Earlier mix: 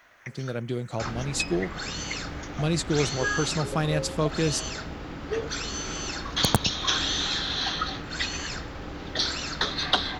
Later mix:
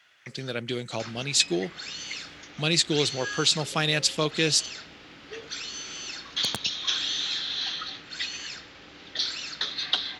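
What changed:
first sound −12.0 dB
second sound −11.5 dB
master: add meter weighting curve D

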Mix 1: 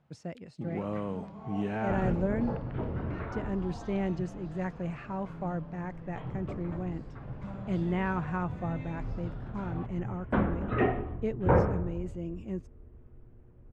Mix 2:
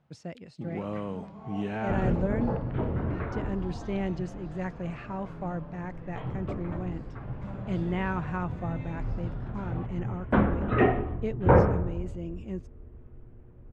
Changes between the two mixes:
speech: add parametric band 3,700 Hz +4 dB 1.4 octaves
second sound +4.5 dB

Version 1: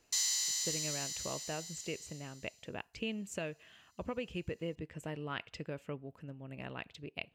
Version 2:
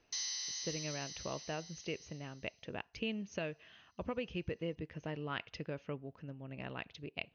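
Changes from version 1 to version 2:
background −4.5 dB
master: add linear-phase brick-wall low-pass 6,600 Hz

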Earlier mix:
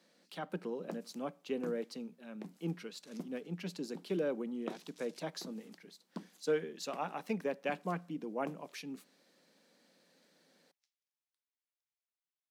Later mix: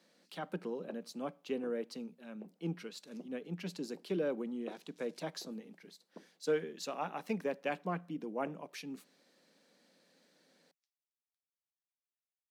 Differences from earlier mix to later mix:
first sound: add resonant band-pass 510 Hz, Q 2
second sound −7.5 dB

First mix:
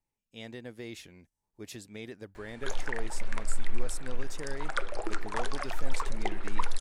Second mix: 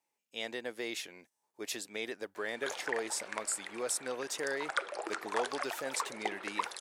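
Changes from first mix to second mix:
speech +7.5 dB
master: add high-pass filter 450 Hz 12 dB per octave

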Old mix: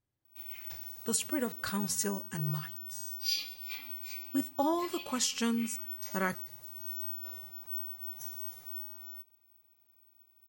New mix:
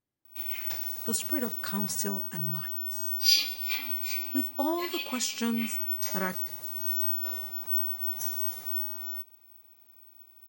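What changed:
background +10.0 dB
master: add low shelf with overshoot 150 Hz −6 dB, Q 1.5

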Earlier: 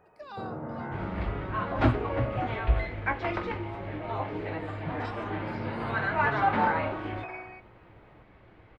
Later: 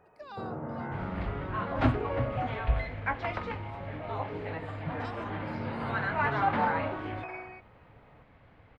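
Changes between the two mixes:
second sound: add parametric band 360 Hz −13 dB 0.22 octaves
reverb: off

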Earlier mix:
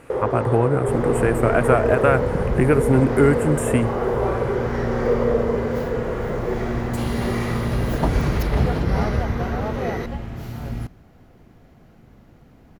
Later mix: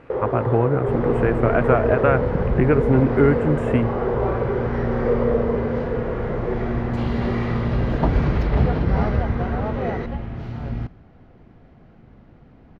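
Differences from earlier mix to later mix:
second sound: send +9.0 dB
master: add high-frequency loss of the air 230 metres

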